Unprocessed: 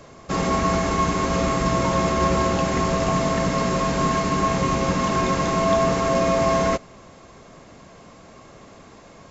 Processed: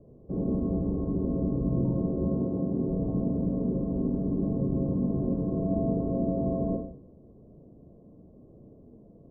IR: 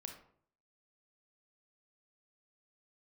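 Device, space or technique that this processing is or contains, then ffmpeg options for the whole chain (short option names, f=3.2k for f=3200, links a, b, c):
next room: -filter_complex "[0:a]asettb=1/sr,asplit=3[a][b][c];[a]atrim=end=2.234[d];[b]atrim=start=2.23:end=2.89,asetpts=PTS-STARTPTS,afade=t=in:d=0.004:c=qsin,afade=t=out:st=0.656:d=0.004:c=qsin,highpass=110[e];[c]atrim=start=2.886[f];[d][e]acrossfade=d=0.004:c1=hsin:c2=qsin[g];[g][f]acrossfade=d=0.004:c1=qsin:c2=hsin,lowpass=f=480:w=0.5412,lowpass=f=480:w=1.3066[h];[1:a]atrim=start_sample=2205[i];[h][i]afir=irnorm=-1:irlink=0"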